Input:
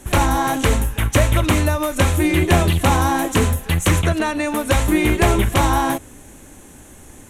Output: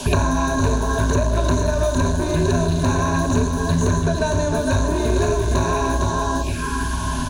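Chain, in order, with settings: treble shelf 8 kHz -3 dB; feedback delay 456 ms, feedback 24%, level -7.5 dB; reverberation RT60 0.80 s, pre-delay 21 ms, DRR 6 dB; touch-sensitive phaser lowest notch 310 Hz, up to 2.5 kHz, full sweep at -21 dBFS; small resonant body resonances 440/2900 Hz, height 6 dB; saturation -14.5 dBFS, distortion -11 dB; rippled EQ curve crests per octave 1.5, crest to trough 17 dB; band noise 2.7–8 kHz -46 dBFS; three bands compressed up and down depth 100%; trim -2.5 dB

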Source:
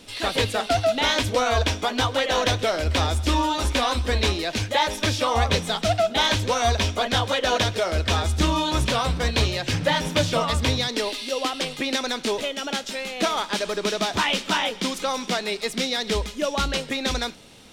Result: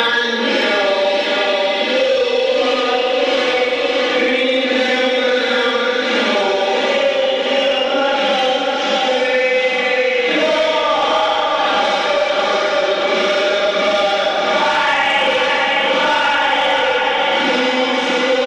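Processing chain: cabinet simulation 390–5100 Hz, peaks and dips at 500 Hz +8 dB, 800 Hz +4 dB, 1.6 kHz +3 dB, 2.3 kHz +3 dB, 4.8 kHz -9 dB; comb 3.4 ms, depth 87%; Paulstretch 4.2×, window 0.10 s, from 10.84 s; feedback delay 595 ms, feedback 48%, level -7 dB; speed mistake 25 fps video run at 24 fps; in parallel at 0 dB: peak limiter -14.5 dBFS, peak gain reduction 9.5 dB; on the sum: saturation -7.5 dBFS, distortion -21 dB; on a send at -4.5 dB: reverberation RT60 4.5 s, pre-delay 43 ms; on the sum: three bands compressed up and down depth 100%

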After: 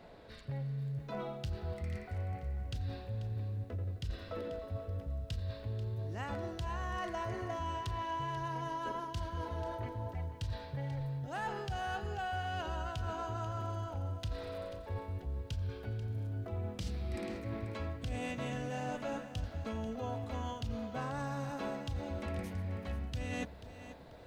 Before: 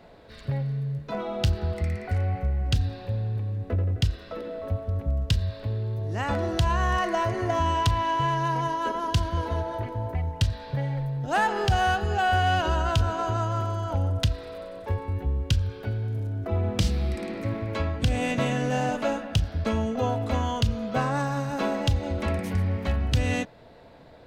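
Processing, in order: reverse; compression 6:1, threshold -32 dBFS, peak gain reduction 14 dB; reverse; bit-crushed delay 488 ms, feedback 35%, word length 10-bit, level -13 dB; trim -4 dB

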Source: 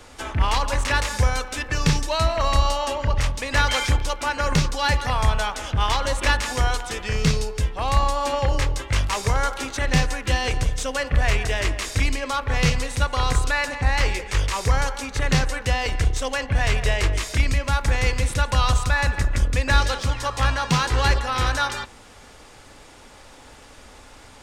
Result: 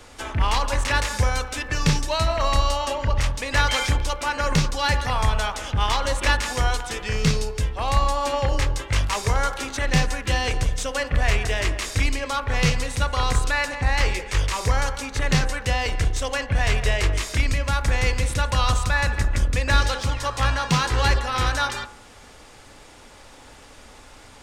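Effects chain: de-hum 65.09 Hz, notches 27

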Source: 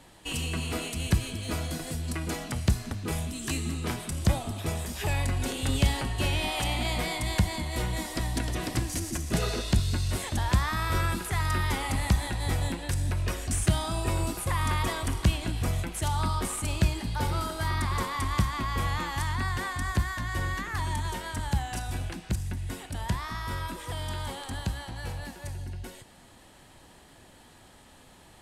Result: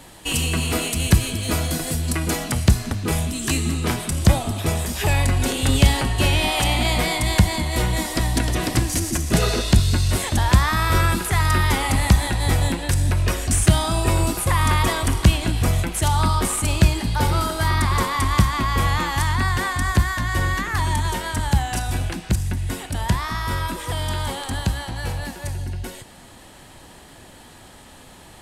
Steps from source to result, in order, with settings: treble shelf 9.2 kHz +7.5 dB, from 2.64 s +2 dB; trim +9 dB

